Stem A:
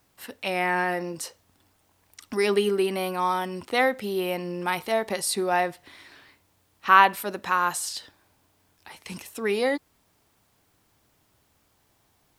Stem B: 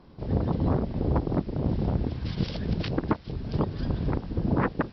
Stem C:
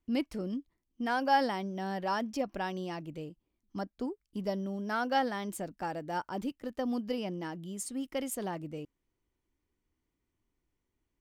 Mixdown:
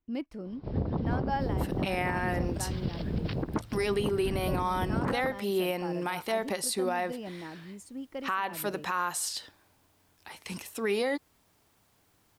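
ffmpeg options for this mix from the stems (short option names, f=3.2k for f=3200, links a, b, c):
-filter_complex "[0:a]adelay=1400,volume=-1dB[a];[1:a]highshelf=f=3.7k:g=-7.5,bandreject=f=56.76:t=h:w=4,bandreject=f=113.52:t=h:w=4,adelay=450,volume=-2dB[b];[2:a]equalizer=f=12k:t=o:w=2.5:g=-10,volume=-3.5dB[c];[a][b][c]amix=inputs=3:normalize=0,alimiter=limit=-20dB:level=0:latency=1:release=151"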